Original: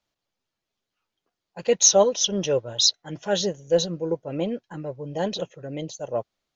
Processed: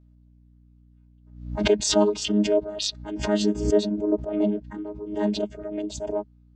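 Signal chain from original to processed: chord vocoder bare fifth, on G#3; hum 60 Hz, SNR 28 dB; backwards sustainer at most 81 dB/s

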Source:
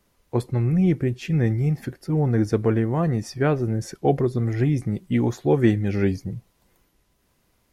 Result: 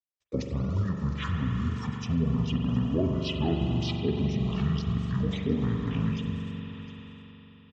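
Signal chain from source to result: bin magnitudes rounded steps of 30 dB; gate -58 dBFS, range -48 dB; bell 410 Hz -12.5 dB 0.74 oct; compressor 3:1, threshold -26 dBFS, peak gain reduction 8 dB; limiter -22 dBFS, peak gain reduction 6.5 dB; pitch shift -10.5 st; speaker cabinet 120–7600 Hz, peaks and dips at 240 Hz +8 dB, 820 Hz -7 dB, 1500 Hz -7 dB; on a send: echo 0.711 s -19.5 dB; on the sum: spring tank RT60 3.9 s, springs 42 ms, chirp 60 ms, DRR 1.5 dB; mismatched tape noise reduction encoder only; gain +5 dB

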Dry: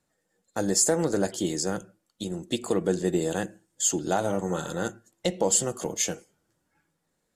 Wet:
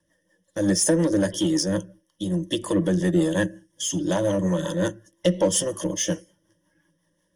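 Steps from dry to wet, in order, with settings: ripple EQ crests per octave 1.2, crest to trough 17 dB; spectral gain 3.79–4, 280–2000 Hz -8 dB; in parallel at -3 dB: soft clip -24.5 dBFS, distortion -8 dB; on the sum: rotary speaker horn 5.5 Hz

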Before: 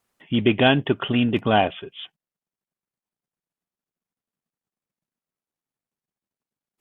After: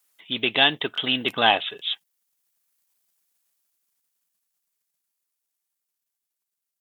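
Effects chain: Doppler pass-by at 3.03, 22 m/s, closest 19 m; tilt +4.5 dB/oct; crackling interface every 0.84 s, samples 1024, repeat, from 0.93; gain +7 dB

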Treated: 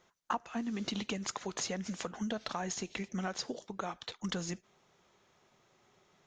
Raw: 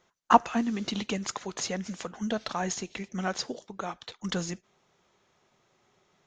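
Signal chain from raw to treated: compressor 6:1, threshold -33 dBFS, peak gain reduction 19.5 dB

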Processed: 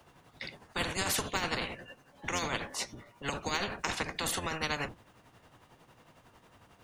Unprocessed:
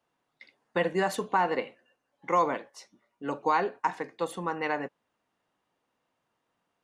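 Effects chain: octaver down 1 oct, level +4 dB; tremolo 11 Hz, depth 58%; spectral compressor 4:1

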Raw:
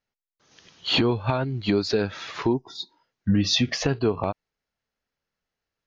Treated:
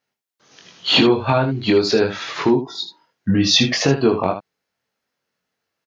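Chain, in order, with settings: HPF 140 Hz 12 dB/oct; on a send: early reflections 22 ms -4 dB, 78 ms -9.5 dB; on the sum: gain +6 dB

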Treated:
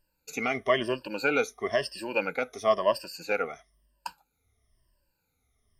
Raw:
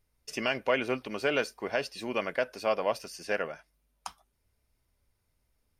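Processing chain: moving spectral ripple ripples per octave 1.3, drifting -1 Hz, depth 21 dB; 0.89–1.49 notch 1900 Hz, Q 5.5; gain -2 dB

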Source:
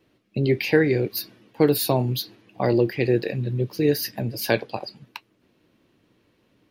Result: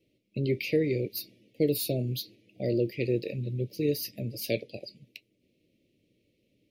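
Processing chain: elliptic band-stop 590–2200 Hz, stop band 40 dB; gain -6.5 dB

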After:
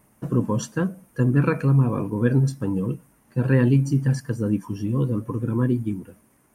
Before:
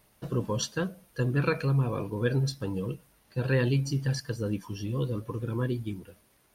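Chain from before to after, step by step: graphic EQ 125/250/1000/2000/4000/8000 Hz +5/+11/+5/+3/-12/+7 dB

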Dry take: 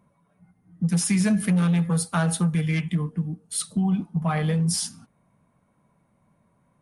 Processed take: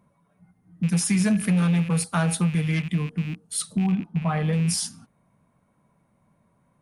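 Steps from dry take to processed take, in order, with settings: rattling part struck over -36 dBFS, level -30 dBFS; 3.92–4.53 high shelf 4200 Hz -12 dB

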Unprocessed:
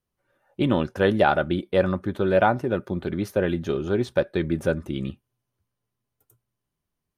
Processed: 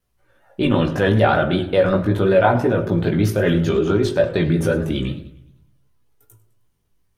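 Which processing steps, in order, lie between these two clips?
chorus voices 6, 0.34 Hz, delay 18 ms, depth 1.7 ms; in parallel at 0 dB: negative-ratio compressor -28 dBFS, ratio -0.5; on the sum: de-hum 45.7 Hz, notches 27; vibrato 5.3 Hz 54 cents; on a send at -9.5 dB: reverb RT60 0.60 s, pre-delay 4 ms; on the sum: warbling echo 0.102 s, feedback 48%, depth 177 cents, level -19 dB; gain +4.5 dB

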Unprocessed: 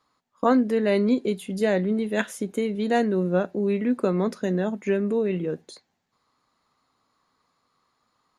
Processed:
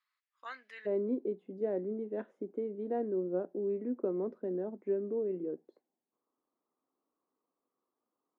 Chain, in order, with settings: ladder band-pass 2400 Hz, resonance 40%, from 0.85 s 400 Hz

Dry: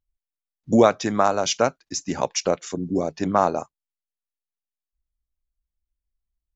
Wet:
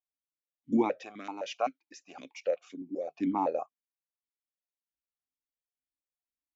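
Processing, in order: 1.03–3.17 low shelf 480 Hz -12 dB; vowel sequencer 7.8 Hz; gain +2 dB

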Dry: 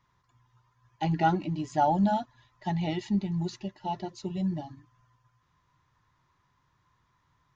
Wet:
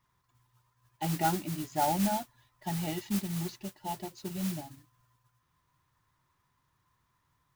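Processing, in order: modulation noise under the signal 10 dB; gain -4.5 dB

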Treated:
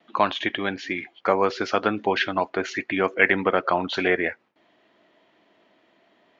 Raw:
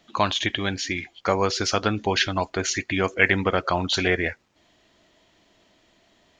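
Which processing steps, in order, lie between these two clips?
gate with hold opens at -57 dBFS; BPF 230–2400 Hz; gain +2 dB

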